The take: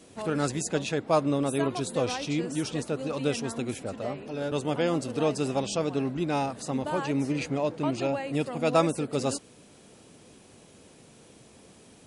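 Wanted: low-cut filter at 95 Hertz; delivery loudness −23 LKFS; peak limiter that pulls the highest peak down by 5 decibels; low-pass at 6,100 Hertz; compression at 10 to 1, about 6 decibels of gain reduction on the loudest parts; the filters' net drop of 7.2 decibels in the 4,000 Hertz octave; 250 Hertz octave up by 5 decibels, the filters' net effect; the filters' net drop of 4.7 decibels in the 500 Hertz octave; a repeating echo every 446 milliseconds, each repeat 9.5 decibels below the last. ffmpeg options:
ffmpeg -i in.wav -af "highpass=95,lowpass=6100,equalizer=frequency=250:width_type=o:gain=9,equalizer=frequency=500:width_type=o:gain=-8.5,equalizer=frequency=4000:width_type=o:gain=-8.5,acompressor=threshold=-25dB:ratio=10,alimiter=limit=-22dB:level=0:latency=1,aecho=1:1:446|892|1338|1784:0.335|0.111|0.0365|0.012,volume=8.5dB" out.wav

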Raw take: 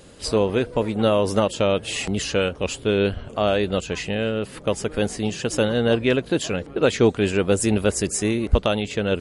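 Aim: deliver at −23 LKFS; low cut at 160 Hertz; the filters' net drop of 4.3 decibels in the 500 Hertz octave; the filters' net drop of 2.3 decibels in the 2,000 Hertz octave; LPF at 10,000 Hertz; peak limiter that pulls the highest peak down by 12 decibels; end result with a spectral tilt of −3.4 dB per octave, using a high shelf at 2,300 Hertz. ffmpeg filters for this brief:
ffmpeg -i in.wav -af "highpass=160,lowpass=10000,equalizer=frequency=500:width_type=o:gain=-5,equalizer=frequency=2000:width_type=o:gain=-5.5,highshelf=frequency=2300:gain=3.5,volume=6dB,alimiter=limit=-11.5dB:level=0:latency=1" out.wav

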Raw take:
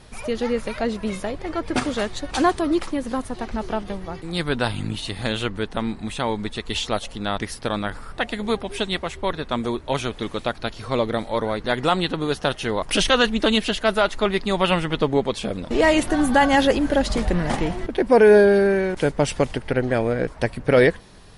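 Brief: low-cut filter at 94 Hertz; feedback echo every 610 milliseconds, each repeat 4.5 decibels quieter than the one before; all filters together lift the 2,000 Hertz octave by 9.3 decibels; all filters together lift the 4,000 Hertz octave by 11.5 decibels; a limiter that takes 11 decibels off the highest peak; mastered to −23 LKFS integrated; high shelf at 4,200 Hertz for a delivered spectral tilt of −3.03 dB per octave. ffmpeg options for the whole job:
ffmpeg -i in.wav -af "highpass=94,equalizer=frequency=2000:width_type=o:gain=8.5,equalizer=frequency=4000:width_type=o:gain=7.5,highshelf=frequency=4200:gain=7.5,alimiter=limit=-5.5dB:level=0:latency=1,aecho=1:1:610|1220|1830|2440|3050|3660|4270|4880|5490:0.596|0.357|0.214|0.129|0.0772|0.0463|0.0278|0.0167|0.01,volume=-5.5dB" out.wav

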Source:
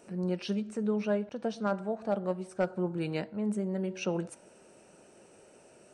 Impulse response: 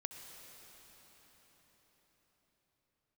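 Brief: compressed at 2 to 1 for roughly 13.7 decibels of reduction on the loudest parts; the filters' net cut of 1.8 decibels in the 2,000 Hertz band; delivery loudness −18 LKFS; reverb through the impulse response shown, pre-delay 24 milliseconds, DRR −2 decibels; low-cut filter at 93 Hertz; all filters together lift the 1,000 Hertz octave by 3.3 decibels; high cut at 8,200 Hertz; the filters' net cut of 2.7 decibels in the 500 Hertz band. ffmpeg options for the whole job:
-filter_complex "[0:a]highpass=93,lowpass=8200,equalizer=frequency=500:width_type=o:gain=-5.5,equalizer=frequency=1000:width_type=o:gain=8,equalizer=frequency=2000:width_type=o:gain=-6,acompressor=threshold=-52dB:ratio=2,asplit=2[link_01][link_02];[1:a]atrim=start_sample=2205,adelay=24[link_03];[link_02][link_03]afir=irnorm=-1:irlink=0,volume=4dB[link_04];[link_01][link_04]amix=inputs=2:normalize=0,volume=25dB"

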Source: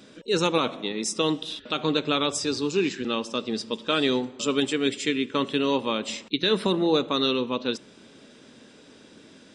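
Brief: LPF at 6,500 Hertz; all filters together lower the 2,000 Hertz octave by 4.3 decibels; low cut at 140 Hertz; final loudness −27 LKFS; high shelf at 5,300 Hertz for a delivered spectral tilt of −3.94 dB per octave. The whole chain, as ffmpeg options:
ffmpeg -i in.wav -af "highpass=140,lowpass=6500,equalizer=frequency=2000:width_type=o:gain=-7,highshelf=frequency=5300:gain=4,volume=-0.5dB" out.wav

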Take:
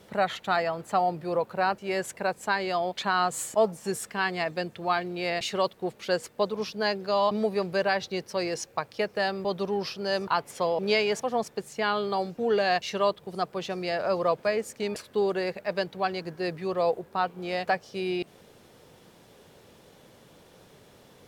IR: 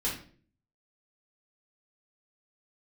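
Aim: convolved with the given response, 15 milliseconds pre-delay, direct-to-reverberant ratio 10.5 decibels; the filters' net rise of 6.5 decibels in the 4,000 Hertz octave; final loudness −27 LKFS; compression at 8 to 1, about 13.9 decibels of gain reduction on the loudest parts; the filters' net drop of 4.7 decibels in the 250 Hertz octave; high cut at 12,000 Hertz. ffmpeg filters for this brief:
-filter_complex "[0:a]lowpass=12000,equalizer=frequency=250:width_type=o:gain=-8,equalizer=frequency=4000:width_type=o:gain=8,acompressor=threshold=-34dB:ratio=8,asplit=2[link_01][link_02];[1:a]atrim=start_sample=2205,adelay=15[link_03];[link_02][link_03]afir=irnorm=-1:irlink=0,volume=-16dB[link_04];[link_01][link_04]amix=inputs=2:normalize=0,volume=10.5dB"

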